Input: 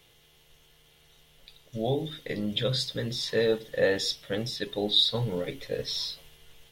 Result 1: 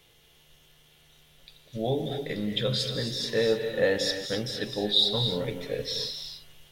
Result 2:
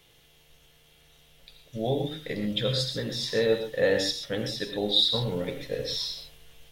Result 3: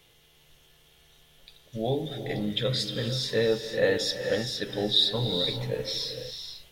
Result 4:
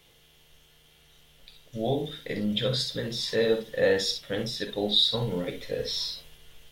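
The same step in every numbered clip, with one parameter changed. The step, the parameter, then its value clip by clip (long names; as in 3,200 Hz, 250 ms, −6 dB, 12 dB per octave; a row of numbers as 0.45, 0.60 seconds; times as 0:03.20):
reverb whose tail is shaped and stops, gate: 300, 150, 510, 80 milliseconds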